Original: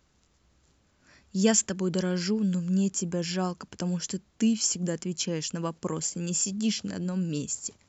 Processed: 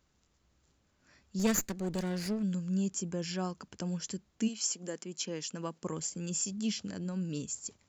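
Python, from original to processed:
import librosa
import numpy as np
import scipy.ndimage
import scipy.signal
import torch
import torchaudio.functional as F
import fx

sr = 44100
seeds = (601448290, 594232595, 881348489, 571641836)

y = fx.lower_of_two(x, sr, delay_ms=0.46, at=(1.39, 2.43))
y = fx.highpass(y, sr, hz=fx.line((4.47, 440.0), (5.83, 140.0)), slope=12, at=(4.47, 5.83), fade=0.02)
y = y * librosa.db_to_amplitude(-6.0)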